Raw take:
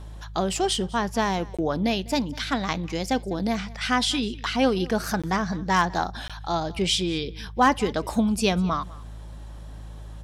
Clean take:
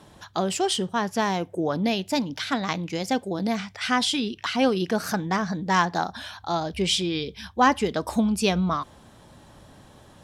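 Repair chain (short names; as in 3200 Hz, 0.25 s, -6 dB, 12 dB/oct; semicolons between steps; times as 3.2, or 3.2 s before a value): clip repair -9 dBFS; de-hum 53.5 Hz, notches 3; interpolate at 1.57/5.22/6.28, 16 ms; inverse comb 0.2 s -22 dB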